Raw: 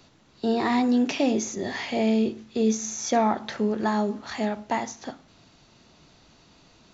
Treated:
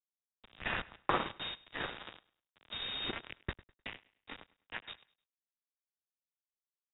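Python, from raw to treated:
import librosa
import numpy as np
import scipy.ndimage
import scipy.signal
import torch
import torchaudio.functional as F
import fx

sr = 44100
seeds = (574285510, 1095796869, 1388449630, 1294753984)

p1 = fx.tracing_dist(x, sr, depth_ms=0.078)
p2 = scipy.signal.sosfilt(scipy.signal.butter(4, 1100.0, 'highpass', fs=sr, output='sos'), p1)
p3 = np.diff(p2, prepend=0.0)
p4 = np.sign(p3) * np.maximum(np.abs(p3) - 10.0 ** (-49.0 / 20.0), 0.0)
p5 = p3 + F.gain(torch.from_numpy(p4), -9.0).numpy()
p6 = fx.quant_dither(p5, sr, seeds[0], bits=6, dither='none')
p7 = np.sign(p6) * np.maximum(np.abs(p6) - 10.0 ** (-41.0 / 20.0), 0.0)
p8 = fx.echo_feedback(p7, sr, ms=102, feedback_pct=44, wet_db=-19.0)
p9 = fx.freq_invert(p8, sr, carrier_hz=3700)
p10 = fx.band_widen(p9, sr, depth_pct=70)
y = F.gain(torch.from_numpy(p10), 7.0).numpy()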